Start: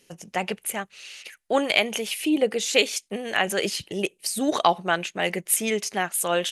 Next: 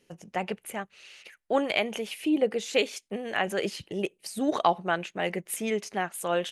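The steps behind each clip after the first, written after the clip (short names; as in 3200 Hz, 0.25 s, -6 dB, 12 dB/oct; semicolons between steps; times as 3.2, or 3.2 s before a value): high shelf 2900 Hz -10.5 dB; gain -2.5 dB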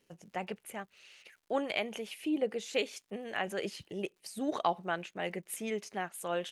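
crackle 160/s -52 dBFS; gain -7 dB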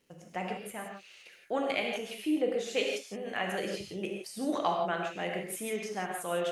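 non-linear reverb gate 0.19 s flat, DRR 0.5 dB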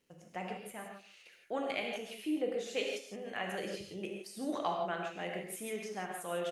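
echo 0.144 s -18 dB; gain -5 dB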